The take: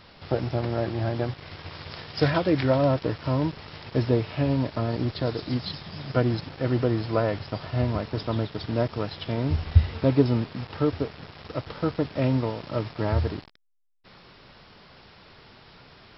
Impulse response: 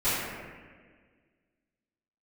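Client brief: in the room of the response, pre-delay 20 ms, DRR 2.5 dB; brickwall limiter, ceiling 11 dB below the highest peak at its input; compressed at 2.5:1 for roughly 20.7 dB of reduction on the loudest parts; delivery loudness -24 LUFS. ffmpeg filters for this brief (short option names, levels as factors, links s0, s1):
-filter_complex "[0:a]acompressor=threshold=0.00708:ratio=2.5,alimiter=level_in=3.16:limit=0.0631:level=0:latency=1,volume=0.316,asplit=2[s0][s1];[1:a]atrim=start_sample=2205,adelay=20[s2];[s1][s2]afir=irnorm=-1:irlink=0,volume=0.158[s3];[s0][s3]amix=inputs=2:normalize=0,volume=9.44"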